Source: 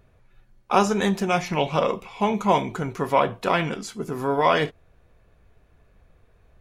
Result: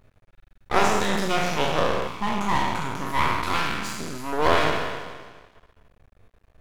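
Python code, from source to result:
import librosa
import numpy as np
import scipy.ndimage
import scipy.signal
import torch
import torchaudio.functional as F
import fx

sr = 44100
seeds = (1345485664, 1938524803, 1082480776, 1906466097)

y = fx.spec_trails(x, sr, decay_s=1.6)
y = fx.band_shelf(y, sr, hz=540.0, db=-13.5, octaves=1.0, at=(2.07, 4.33))
y = np.maximum(y, 0.0)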